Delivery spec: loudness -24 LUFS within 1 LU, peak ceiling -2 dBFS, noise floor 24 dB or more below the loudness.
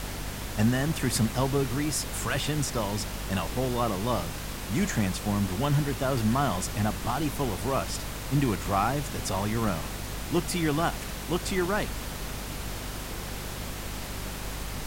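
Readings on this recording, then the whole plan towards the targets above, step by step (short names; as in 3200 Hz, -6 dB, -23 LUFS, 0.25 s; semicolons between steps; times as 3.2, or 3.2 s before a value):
hum 50 Hz; harmonics up to 250 Hz; hum level -36 dBFS; noise floor -37 dBFS; noise floor target -53 dBFS; loudness -29.0 LUFS; peak -11.0 dBFS; loudness target -24.0 LUFS
-> de-hum 50 Hz, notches 5; noise print and reduce 16 dB; gain +5 dB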